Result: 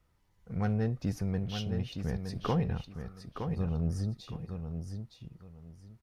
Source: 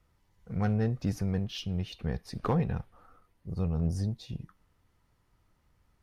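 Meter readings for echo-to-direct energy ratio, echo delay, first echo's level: -7.0 dB, 915 ms, -7.0 dB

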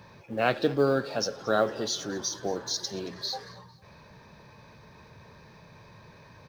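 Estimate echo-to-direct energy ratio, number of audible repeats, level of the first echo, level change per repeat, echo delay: -20.5 dB, 2, -21.0 dB, -8.5 dB, 226 ms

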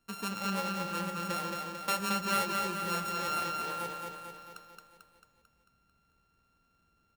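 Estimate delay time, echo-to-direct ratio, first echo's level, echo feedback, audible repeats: 222 ms, -2.0 dB, -3.5 dB, 57%, 7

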